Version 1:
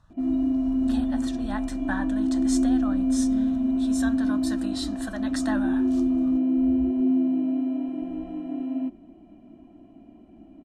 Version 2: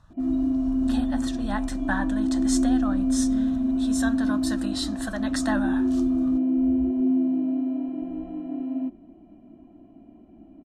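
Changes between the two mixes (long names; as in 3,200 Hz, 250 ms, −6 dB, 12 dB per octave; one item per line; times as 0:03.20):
speech +3.5 dB
background: add high-shelf EQ 2,100 Hz −8 dB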